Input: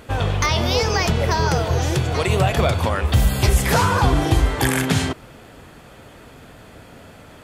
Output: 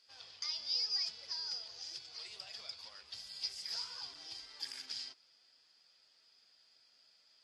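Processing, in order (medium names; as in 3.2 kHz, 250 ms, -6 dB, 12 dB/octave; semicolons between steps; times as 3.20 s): in parallel at -8.5 dB: wavefolder -22 dBFS; on the sum: band-pass filter 4.9 kHz, Q 18; trim -1 dB; AAC 32 kbps 48 kHz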